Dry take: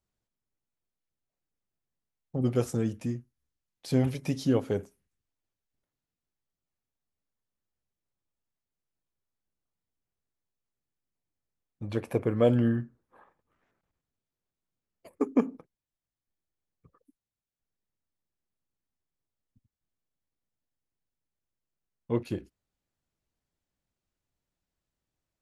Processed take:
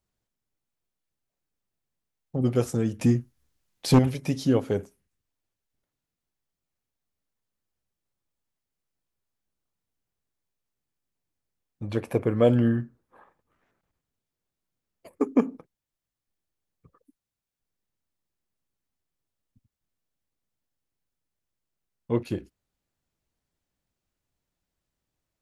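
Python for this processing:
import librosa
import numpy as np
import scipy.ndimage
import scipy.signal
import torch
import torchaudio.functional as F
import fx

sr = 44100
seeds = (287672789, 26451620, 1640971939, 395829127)

y = fx.fold_sine(x, sr, drive_db=5, ceiling_db=-13.0, at=(2.99, 3.99))
y = y * librosa.db_to_amplitude(3.0)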